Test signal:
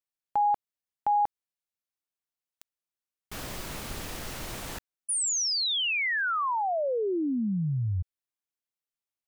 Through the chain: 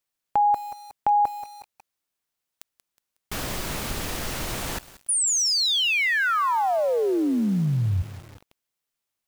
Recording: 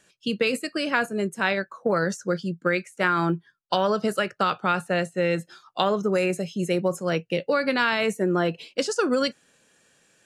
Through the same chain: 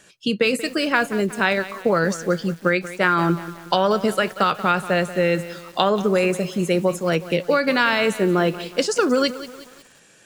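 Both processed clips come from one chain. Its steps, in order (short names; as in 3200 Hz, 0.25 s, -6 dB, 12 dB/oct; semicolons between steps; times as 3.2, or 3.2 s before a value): in parallel at 0 dB: compressor 10:1, threshold -37 dBFS; on the sum: lo-fi delay 0.183 s, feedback 55%, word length 6-bit, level -14 dB; gain +3 dB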